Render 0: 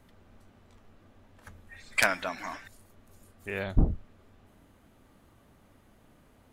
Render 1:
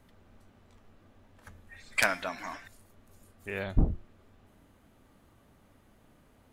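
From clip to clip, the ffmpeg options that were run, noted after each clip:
-af "bandreject=f=348.5:t=h:w=4,bandreject=f=697:t=h:w=4,bandreject=f=1.0455k:t=h:w=4,bandreject=f=1.394k:t=h:w=4,bandreject=f=1.7425k:t=h:w=4,bandreject=f=2.091k:t=h:w=4,bandreject=f=2.4395k:t=h:w=4,bandreject=f=2.788k:t=h:w=4,bandreject=f=3.1365k:t=h:w=4,bandreject=f=3.485k:t=h:w=4,bandreject=f=3.8335k:t=h:w=4,bandreject=f=4.182k:t=h:w=4,bandreject=f=4.5305k:t=h:w=4,bandreject=f=4.879k:t=h:w=4,bandreject=f=5.2275k:t=h:w=4,bandreject=f=5.576k:t=h:w=4,bandreject=f=5.9245k:t=h:w=4,bandreject=f=6.273k:t=h:w=4,bandreject=f=6.6215k:t=h:w=4,bandreject=f=6.97k:t=h:w=4,bandreject=f=7.3185k:t=h:w=4,bandreject=f=7.667k:t=h:w=4,bandreject=f=8.0155k:t=h:w=4,bandreject=f=8.364k:t=h:w=4,bandreject=f=8.7125k:t=h:w=4,bandreject=f=9.061k:t=h:w=4,bandreject=f=9.4095k:t=h:w=4,bandreject=f=9.758k:t=h:w=4,bandreject=f=10.1065k:t=h:w=4,bandreject=f=10.455k:t=h:w=4,bandreject=f=10.8035k:t=h:w=4,bandreject=f=11.152k:t=h:w=4,bandreject=f=11.5005k:t=h:w=4,bandreject=f=11.849k:t=h:w=4,bandreject=f=12.1975k:t=h:w=4,bandreject=f=12.546k:t=h:w=4,bandreject=f=12.8945k:t=h:w=4,bandreject=f=13.243k:t=h:w=4,volume=-1.5dB"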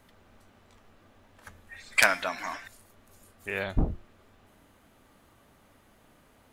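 -af "lowshelf=f=410:g=-7.5,volume=5.5dB"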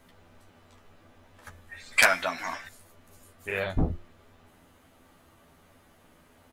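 -filter_complex "[0:a]asplit=2[a][b];[b]adelay=12,volume=-3.5dB[c];[a][c]amix=inputs=2:normalize=0"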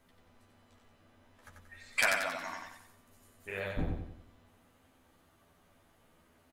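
-af "aecho=1:1:91|182|273|364|455|546:0.631|0.278|0.122|0.0537|0.0236|0.0104,volume=-9dB"

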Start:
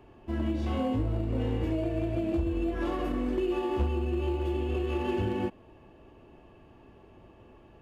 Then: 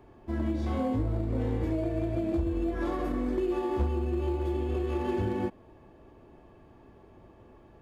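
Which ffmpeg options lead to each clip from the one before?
-af "equalizer=f=2.8k:t=o:w=0.2:g=-13"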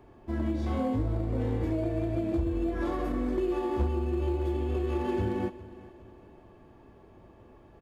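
-af "aecho=1:1:410|820|1230:0.126|0.0529|0.0222"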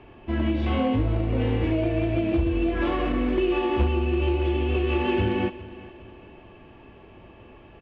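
-af "lowpass=f=2.8k:t=q:w=4.9,volume=5.5dB"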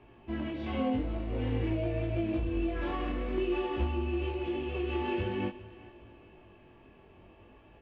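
-af "flanger=delay=17:depth=6.1:speed=0.5,volume=-5.5dB"

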